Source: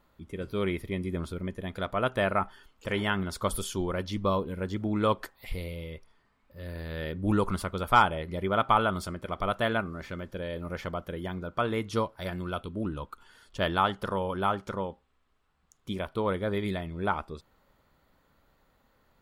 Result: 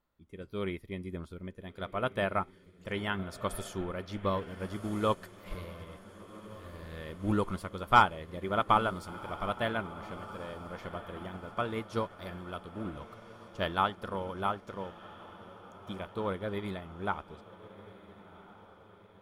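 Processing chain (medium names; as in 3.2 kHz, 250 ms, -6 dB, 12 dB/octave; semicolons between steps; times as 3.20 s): echo that smears into a reverb 1418 ms, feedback 63%, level -11 dB; upward expansion 1.5:1, over -47 dBFS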